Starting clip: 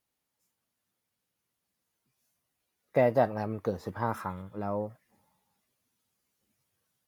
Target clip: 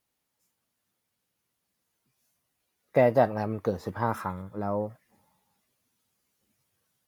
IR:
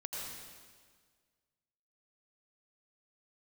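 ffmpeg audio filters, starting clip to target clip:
-filter_complex "[0:a]asettb=1/sr,asplit=3[a][b][c];[a]atrim=end=4.314[d];[b]atrim=start=4.31:end=4.82,asetpts=PTS-STARTPTS,afade=t=in:d=0.004:c=qsin,afade=t=out:st=0.506:d=0.004:c=qsin,equalizer=f=2.9k:w=3.2:g=-11.5[e];[c]atrim=start=4.816[f];[d][e]acrossfade=d=0.004:c1=hsin:c2=qsin[g];[g][f]acrossfade=d=0.004:c1=qsin:c2=hsin,volume=3dB"

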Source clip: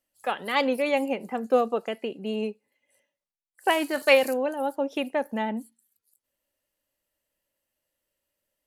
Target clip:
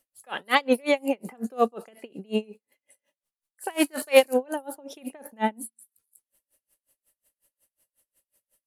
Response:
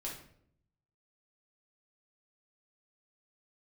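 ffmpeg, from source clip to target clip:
-af "asetnsamples=n=441:p=0,asendcmd='5.44 equalizer g 15',equalizer=f=10k:w=1.4:g=7.5,aeval=exprs='val(0)*pow(10,-34*(0.5-0.5*cos(2*PI*5.5*n/s))/20)':c=same,volume=8.5dB"

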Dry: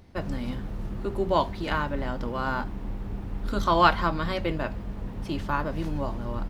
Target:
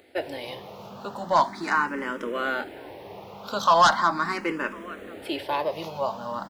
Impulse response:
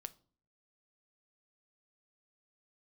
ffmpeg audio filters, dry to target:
-filter_complex "[0:a]highpass=390,asplit=2[a][b];[b]adelay=1050,volume=-21dB,highshelf=f=4k:g=-23.6[c];[a][c]amix=inputs=2:normalize=0,aeval=exprs='0.562*sin(PI/2*3.16*val(0)/0.562)':c=same,asplit=2[d][e];[e]afreqshift=0.39[f];[d][f]amix=inputs=2:normalize=1,volume=-5.5dB"

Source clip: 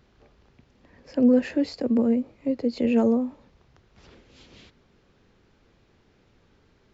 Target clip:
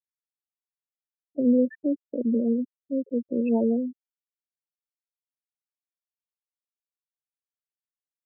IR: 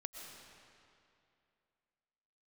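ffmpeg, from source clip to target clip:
-af "afftfilt=real='re*gte(hypot(re,im),0.112)':imag='im*gte(hypot(re,im),0.112)':win_size=1024:overlap=0.75,atempo=0.84,volume=-2.5dB"

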